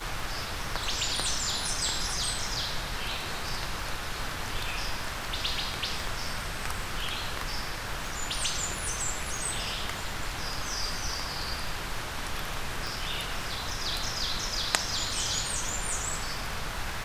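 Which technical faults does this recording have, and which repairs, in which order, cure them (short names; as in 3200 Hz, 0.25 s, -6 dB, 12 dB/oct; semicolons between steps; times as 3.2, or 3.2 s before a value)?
crackle 21/s -35 dBFS
12.87 pop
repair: de-click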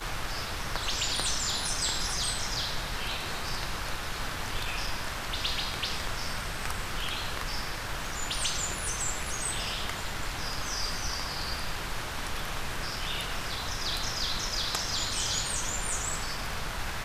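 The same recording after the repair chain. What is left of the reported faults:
12.87 pop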